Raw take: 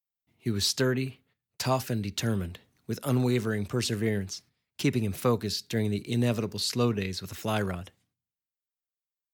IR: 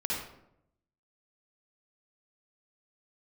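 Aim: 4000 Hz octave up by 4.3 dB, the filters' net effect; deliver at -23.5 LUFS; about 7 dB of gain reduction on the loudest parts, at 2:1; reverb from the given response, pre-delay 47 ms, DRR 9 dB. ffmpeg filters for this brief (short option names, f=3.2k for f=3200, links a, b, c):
-filter_complex "[0:a]equalizer=f=4k:t=o:g=5,acompressor=threshold=-33dB:ratio=2,asplit=2[a][b];[1:a]atrim=start_sample=2205,adelay=47[c];[b][c]afir=irnorm=-1:irlink=0,volume=-15dB[d];[a][d]amix=inputs=2:normalize=0,volume=10dB"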